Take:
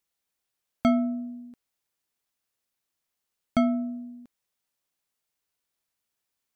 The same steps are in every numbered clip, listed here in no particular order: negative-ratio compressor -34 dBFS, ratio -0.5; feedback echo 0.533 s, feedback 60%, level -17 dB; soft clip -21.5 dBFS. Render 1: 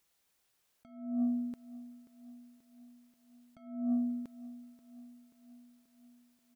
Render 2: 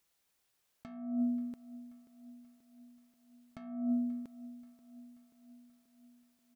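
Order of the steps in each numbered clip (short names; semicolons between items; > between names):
negative-ratio compressor > soft clip > feedback echo; soft clip > negative-ratio compressor > feedback echo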